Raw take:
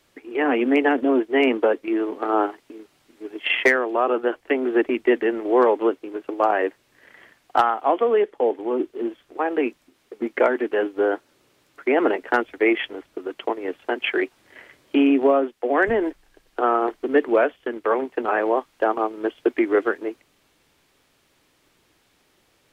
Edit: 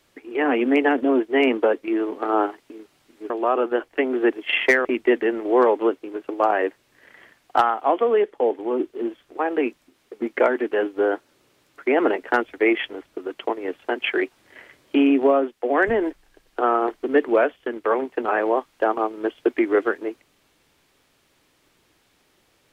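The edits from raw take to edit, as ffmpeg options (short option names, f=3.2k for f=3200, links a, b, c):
-filter_complex "[0:a]asplit=4[a][b][c][d];[a]atrim=end=3.302[e];[b]atrim=start=3.818:end=4.852[f];[c]atrim=start=3.298:end=3.822[g];[d]atrim=start=4.848[h];[e][f]acrossfade=d=0.004:c1=hsin:c2=hsin[i];[i][g]acrossfade=d=0.004:c1=hsin:c2=hsin[j];[j][h]acrossfade=d=0.004:c1=hsin:c2=hsin"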